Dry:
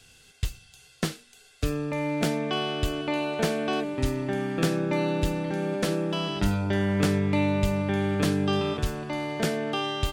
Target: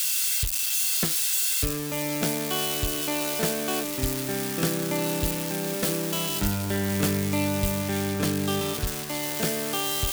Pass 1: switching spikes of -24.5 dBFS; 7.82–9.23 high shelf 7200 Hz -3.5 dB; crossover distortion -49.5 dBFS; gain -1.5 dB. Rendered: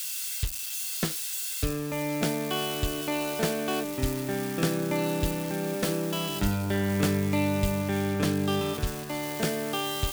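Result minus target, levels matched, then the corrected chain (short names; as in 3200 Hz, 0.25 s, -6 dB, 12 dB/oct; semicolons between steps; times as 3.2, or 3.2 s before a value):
switching spikes: distortion -8 dB
switching spikes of -16.5 dBFS; 7.82–9.23 high shelf 7200 Hz -3.5 dB; crossover distortion -49.5 dBFS; gain -1.5 dB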